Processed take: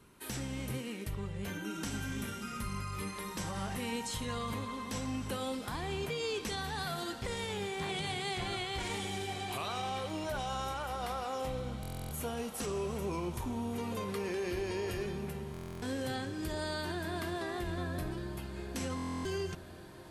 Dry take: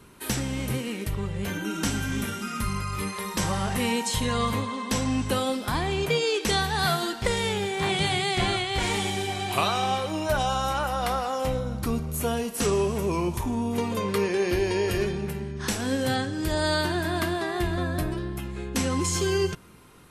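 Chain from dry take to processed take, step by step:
brickwall limiter −19 dBFS, peak gain reduction 7.5 dB
on a send: feedback delay with all-pass diffusion 1,756 ms, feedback 63%, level −15 dB
on the sum: buffer that repeats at 0:11.81/0:15.52/0:18.95, samples 1,024, times 12
level −9 dB

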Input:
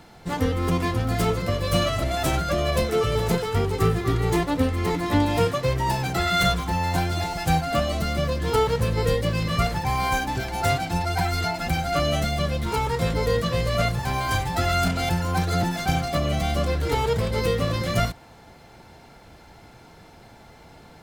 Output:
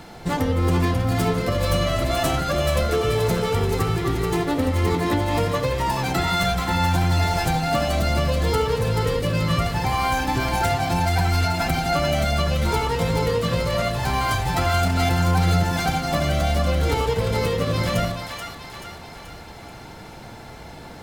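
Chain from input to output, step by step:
downward compressor, threshold −27 dBFS, peak gain reduction 11.5 dB
echo with a time of its own for lows and highs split 880 Hz, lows 80 ms, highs 432 ms, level −5 dB
level +7 dB

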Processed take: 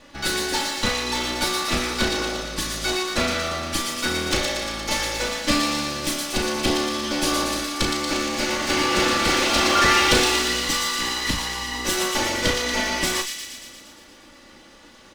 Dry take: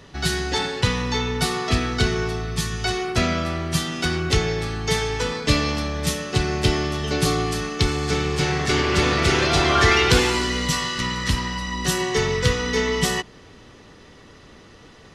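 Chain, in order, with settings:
lower of the sound and its delayed copy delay 3.5 ms
parametric band 63 Hz −8.5 dB 1.9 octaves
double-tracking delay 35 ms −6.5 dB
on a send: delay with a high-pass on its return 117 ms, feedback 66%, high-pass 3,000 Hz, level −3 dB

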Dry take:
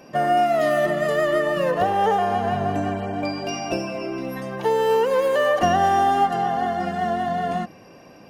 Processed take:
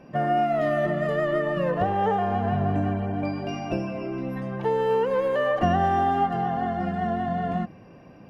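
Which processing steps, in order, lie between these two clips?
bass and treble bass +9 dB, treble −14 dB
level −4.5 dB

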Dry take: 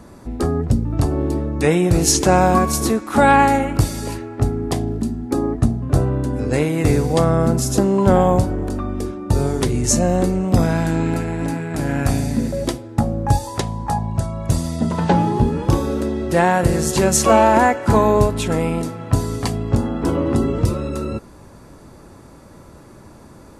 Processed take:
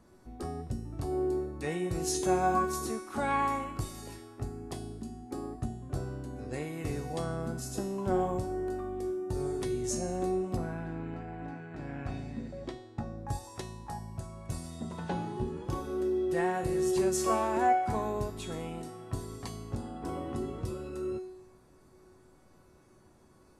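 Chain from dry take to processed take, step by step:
0:10.56–0:13.16: low-pass filter 1,900 Hz → 4,600 Hz 12 dB per octave
tuned comb filter 370 Hz, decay 0.85 s, mix 90%

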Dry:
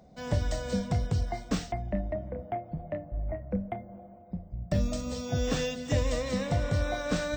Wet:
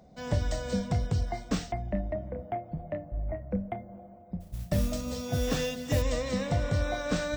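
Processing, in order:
0:04.40–0:06.02: noise that follows the level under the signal 19 dB

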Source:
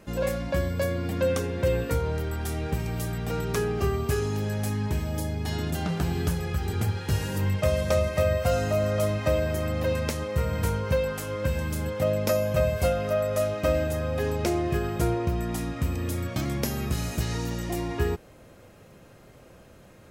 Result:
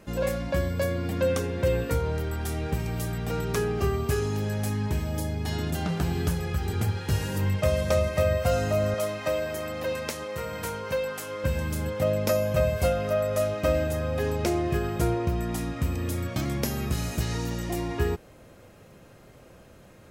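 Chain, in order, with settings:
0:08.94–0:11.44: high-pass filter 440 Hz 6 dB per octave

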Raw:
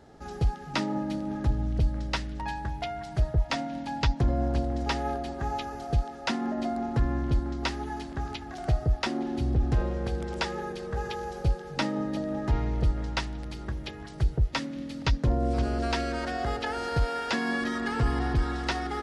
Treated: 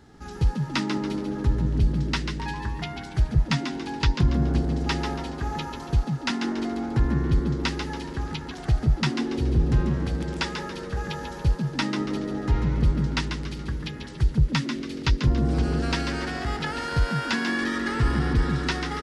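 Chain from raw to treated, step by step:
parametric band 600 Hz −13 dB 0.76 octaves
echo with shifted repeats 141 ms, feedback 37%, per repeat +95 Hz, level −7 dB
level +3.5 dB

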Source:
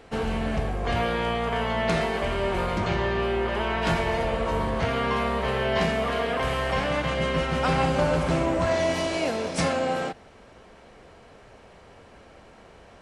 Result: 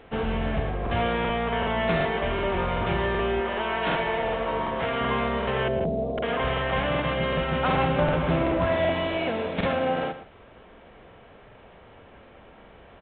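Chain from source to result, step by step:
0:03.40–0:05.01: parametric band 71 Hz −11.5 dB 2.4 octaves
0:05.68–0:06.18: Butterworth low-pass 690 Hz 36 dB per octave
single-tap delay 115 ms −12 dB
regular buffer underruns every 0.38 s, samples 2,048, repeat, from 0:00.82
mu-law 64 kbit/s 8,000 Hz

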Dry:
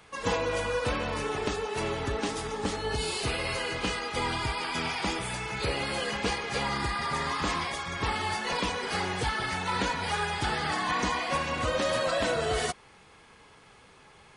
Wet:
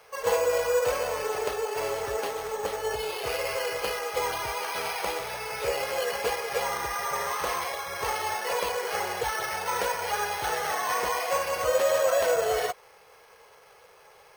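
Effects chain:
low shelf with overshoot 360 Hz −10.5 dB, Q 3
bad sample-rate conversion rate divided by 6×, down filtered, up hold

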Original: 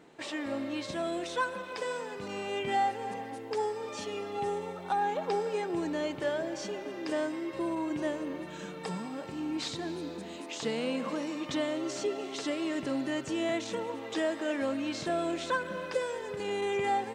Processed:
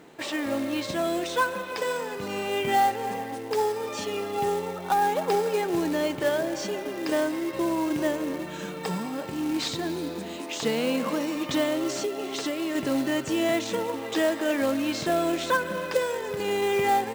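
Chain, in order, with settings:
floating-point word with a short mantissa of 2 bits
0:11.98–0:12.75: downward compressor, threshold −32 dBFS, peak gain reduction 5.5 dB
level +6.5 dB

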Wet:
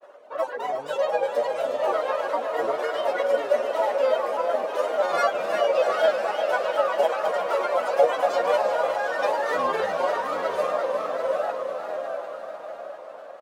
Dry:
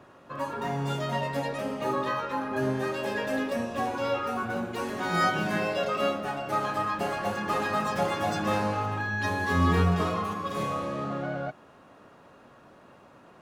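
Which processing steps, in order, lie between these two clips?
reverb reduction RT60 1.7 s
feedback delay with all-pass diffusion 756 ms, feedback 46%, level −5 dB
granular cloud, spray 16 ms, pitch spread up and down by 3 semitones
high-pass with resonance 560 Hz, resonance Q 4.9
repeating echo 361 ms, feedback 56%, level −9 dB
level +1 dB

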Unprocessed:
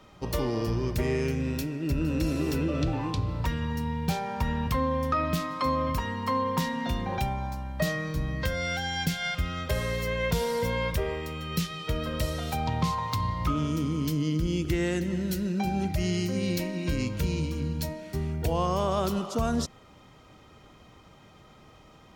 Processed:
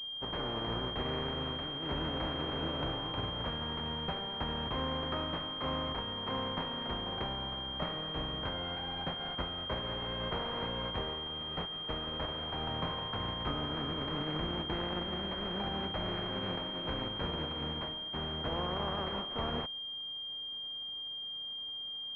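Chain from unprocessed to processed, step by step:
compressing power law on the bin magnitudes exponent 0.39
switching amplifier with a slow clock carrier 3,200 Hz
level −7.5 dB

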